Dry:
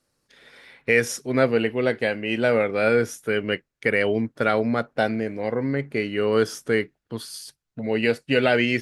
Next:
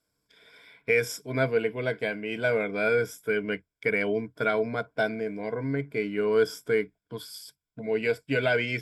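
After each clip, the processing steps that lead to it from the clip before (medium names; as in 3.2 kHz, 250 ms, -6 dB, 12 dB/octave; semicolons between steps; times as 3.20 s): rippled EQ curve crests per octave 1.7, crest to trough 12 dB; trim -7 dB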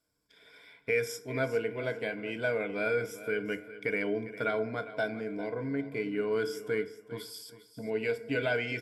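in parallel at -2 dB: compression, threshold -34 dBFS, peak gain reduction 15 dB; on the sum: feedback delay 402 ms, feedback 26%, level -15 dB; FDN reverb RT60 0.81 s, low-frequency decay 0.85×, high-frequency decay 0.5×, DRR 11 dB; trim -7.5 dB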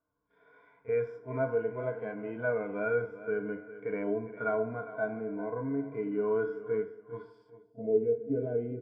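pre-echo 33 ms -19 dB; harmonic-percussive split percussive -16 dB; low-pass sweep 1.1 kHz -> 400 Hz, 7.42–8.05 s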